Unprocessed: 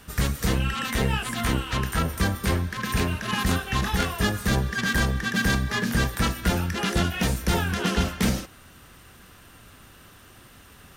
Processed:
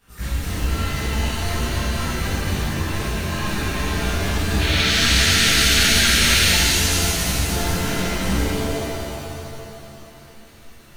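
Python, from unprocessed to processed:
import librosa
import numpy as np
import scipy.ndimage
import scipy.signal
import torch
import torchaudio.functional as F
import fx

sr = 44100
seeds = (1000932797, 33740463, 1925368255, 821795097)

p1 = fx.spec_paint(x, sr, seeds[0], shape='noise', start_s=4.59, length_s=1.92, low_hz=1300.0, high_hz=4500.0, level_db=-18.0)
p2 = fx.quant_companded(p1, sr, bits=4)
p3 = p1 + (p2 * 10.0 ** (-9.0 / 20.0))
p4 = fx.chorus_voices(p3, sr, voices=6, hz=1.0, base_ms=19, depth_ms=3.0, mix_pct=60)
p5 = fx.rev_shimmer(p4, sr, seeds[1], rt60_s=2.6, semitones=7, shimmer_db=-2, drr_db=-8.0)
y = p5 * 10.0 ** (-10.5 / 20.0)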